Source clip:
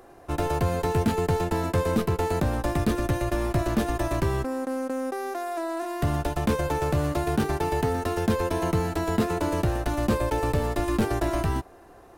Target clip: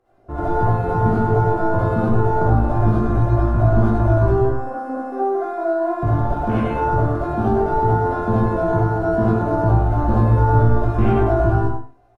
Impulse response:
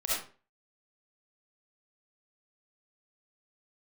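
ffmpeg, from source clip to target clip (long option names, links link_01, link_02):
-filter_complex "[0:a]bandreject=frequency=1700:width=15,afwtdn=0.02,lowpass=frequency=3000:poles=1,equalizer=frequency=110:width_type=o:width=0.23:gain=13,asplit=2[link_01][link_02];[link_02]adelay=18,volume=-5dB[link_03];[link_01][link_03]amix=inputs=2:normalize=0,aecho=1:1:99:0.422[link_04];[1:a]atrim=start_sample=2205,asetrate=48510,aresample=44100[link_05];[link_04][link_05]afir=irnorm=-1:irlink=0"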